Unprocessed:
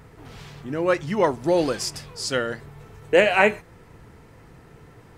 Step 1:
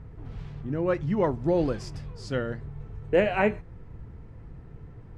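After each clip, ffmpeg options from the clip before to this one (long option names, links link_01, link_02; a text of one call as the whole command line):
ffmpeg -i in.wav -af "aemphasis=mode=reproduction:type=riaa,volume=-7.5dB" out.wav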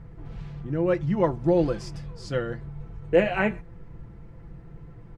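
ffmpeg -i in.wav -af "aecho=1:1:5.9:0.52" out.wav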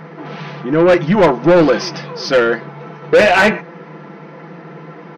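ffmpeg -i in.wav -filter_complex "[0:a]afftfilt=real='re*between(b*sr/4096,150,6400)':imag='im*between(b*sr/4096,150,6400)':win_size=4096:overlap=0.75,asplit=2[link_01][link_02];[link_02]highpass=frequency=720:poles=1,volume=25dB,asoftclip=type=tanh:threshold=-7.5dB[link_03];[link_01][link_03]amix=inputs=2:normalize=0,lowpass=frequency=3300:poles=1,volume=-6dB,volume=6dB" out.wav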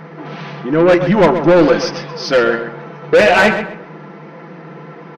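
ffmpeg -i in.wav -filter_complex "[0:a]asplit=2[link_01][link_02];[link_02]adelay=129,lowpass=frequency=3200:poles=1,volume=-9dB,asplit=2[link_03][link_04];[link_04]adelay=129,lowpass=frequency=3200:poles=1,volume=0.31,asplit=2[link_05][link_06];[link_06]adelay=129,lowpass=frequency=3200:poles=1,volume=0.31,asplit=2[link_07][link_08];[link_08]adelay=129,lowpass=frequency=3200:poles=1,volume=0.31[link_09];[link_01][link_03][link_05][link_07][link_09]amix=inputs=5:normalize=0" out.wav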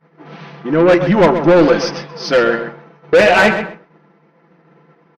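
ffmpeg -i in.wav -af "agate=range=-33dB:threshold=-22dB:ratio=3:detection=peak" out.wav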